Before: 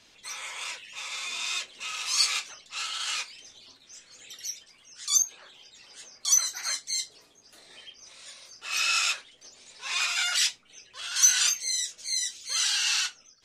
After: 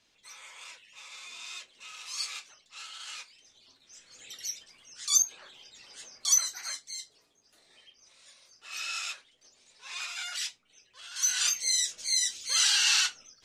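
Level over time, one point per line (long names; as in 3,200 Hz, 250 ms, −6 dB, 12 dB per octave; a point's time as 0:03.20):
0:03.43 −11 dB
0:04.28 −0.5 dB
0:06.26 −0.5 dB
0:06.96 −10 dB
0:11.16 −10 dB
0:11.68 +2 dB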